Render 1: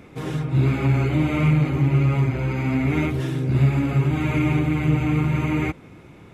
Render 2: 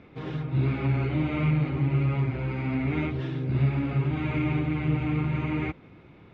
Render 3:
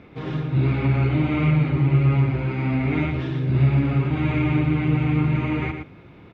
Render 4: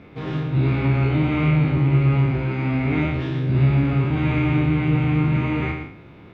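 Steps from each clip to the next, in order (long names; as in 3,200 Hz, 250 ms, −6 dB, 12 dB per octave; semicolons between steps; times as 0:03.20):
low-pass filter 4,300 Hz 24 dB per octave; level −6 dB
single-tap delay 116 ms −7.5 dB; level +4.5 dB
peak hold with a decay on every bin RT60 0.57 s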